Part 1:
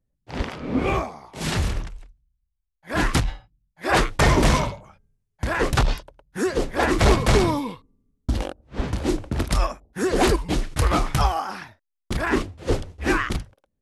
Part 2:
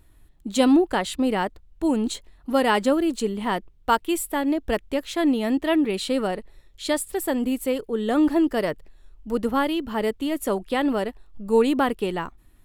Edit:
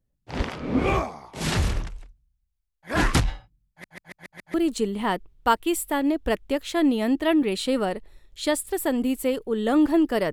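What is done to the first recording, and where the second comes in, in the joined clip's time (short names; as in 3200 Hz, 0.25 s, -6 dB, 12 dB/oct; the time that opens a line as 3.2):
part 1
3.7 stutter in place 0.14 s, 6 plays
4.54 switch to part 2 from 2.96 s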